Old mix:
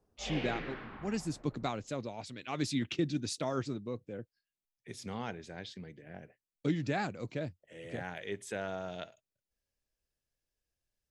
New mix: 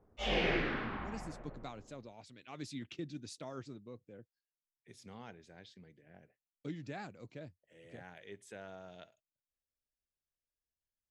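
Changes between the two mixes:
speech -11.0 dB; background +7.0 dB

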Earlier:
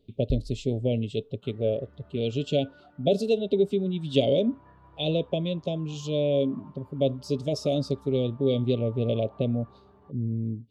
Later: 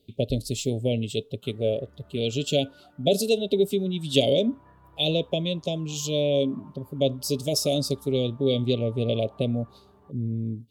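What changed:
speech: remove tape spacing loss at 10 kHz 21 dB; first sound -9.0 dB

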